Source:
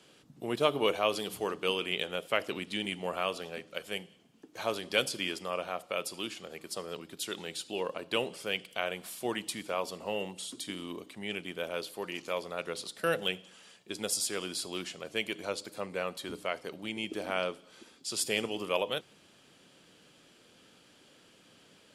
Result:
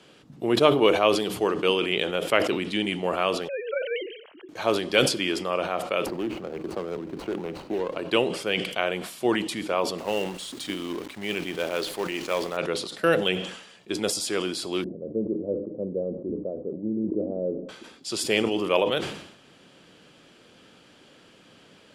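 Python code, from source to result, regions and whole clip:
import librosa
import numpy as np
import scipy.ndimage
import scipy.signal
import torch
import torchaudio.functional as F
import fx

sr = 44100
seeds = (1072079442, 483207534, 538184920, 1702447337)

y = fx.chain(x, sr, fx.sine_speech(),
    fx.pre_swell(db_per_s=82.0), at=(3.48, 4.49))
y = fx.chain(y, sr, fx.median_filter(points=25),
    fx.band_squash(depth_pct=70), at=(6.06, 7.97))
y = fx.chain(y, sr, fx.low_shelf(hz=470.0, db=-3.0),
    fx.quant_companded(bits=4), at=(9.98, 12.57))
y = fx.chain(y, sr, fx.ellip_lowpass(hz=540.0, order=4, stop_db=80),
    fx.peak_eq(hz=220.0, db=5.0, octaves=0.25), at=(14.84, 17.69))
y = fx.lowpass(y, sr, hz=3700.0, slope=6)
y = fx.dynamic_eq(y, sr, hz=340.0, q=2.9, threshold_db=-51.0, ratio=4.0, max_db=5)
y = fx.sustainer(y, sr, db_per_s=74.0)
y = F.gain(torch.from_numpy(y), 7.5).numpy()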